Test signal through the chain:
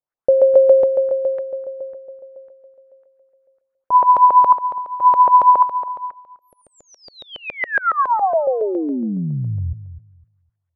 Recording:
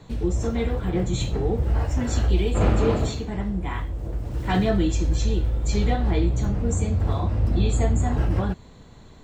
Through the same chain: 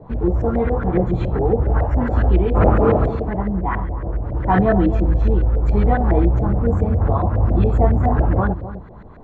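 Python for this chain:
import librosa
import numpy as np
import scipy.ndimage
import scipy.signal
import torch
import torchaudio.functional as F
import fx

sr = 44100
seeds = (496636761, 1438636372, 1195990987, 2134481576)

y = fx.echo_filtered(x, sr, ms=255, feedback_pct=20, hz=1000.0, wet_db=-12)
y = fx.filter_lfo_lowpass(y, sr, shape='saw_up', hz=7.2, low_hz=550.0, high_hz=1800.0, q=2.8)
y = F.gain(torch.from_numpy(y), 4.5).numpy()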